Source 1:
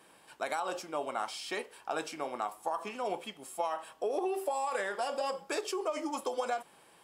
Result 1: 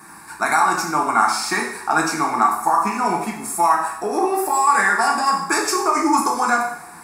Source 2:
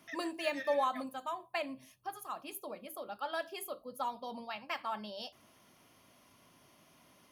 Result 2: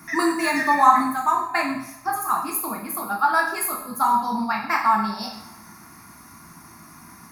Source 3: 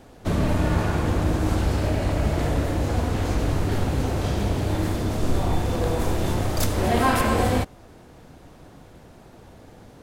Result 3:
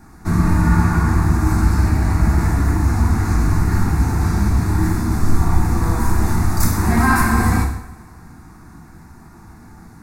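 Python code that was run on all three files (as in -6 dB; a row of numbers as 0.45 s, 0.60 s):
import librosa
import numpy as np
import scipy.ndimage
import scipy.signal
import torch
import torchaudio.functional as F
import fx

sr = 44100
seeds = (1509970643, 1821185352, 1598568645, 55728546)

y = fx.fixed_phaser(x, sr, hz=1300.0, stages=4)
y = fx.rev_double_slope(y, sr, seeds[0], early_s=0.68, late_s=2.7, knee_db=-24, drr_db=-0.5)
y = y * 10.0 ** (-2 / 20.0) / np.max(np.abs(y))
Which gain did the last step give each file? +19.0 dB, +18.0 dB, +4.5 dB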